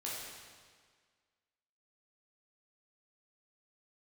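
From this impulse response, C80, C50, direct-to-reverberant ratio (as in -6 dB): 1.0 dB, -1.5 dB, -6.5 dB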